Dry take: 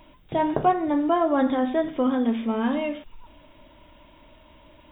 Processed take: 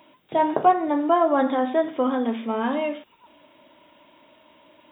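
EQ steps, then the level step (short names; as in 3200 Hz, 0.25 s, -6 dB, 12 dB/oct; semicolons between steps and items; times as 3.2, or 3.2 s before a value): HPF 240 Hz 12 dB/oct; dynamic EQ 900 Hz, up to +4 dB, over -33 dBFS, Q 0.79; 0.0 dB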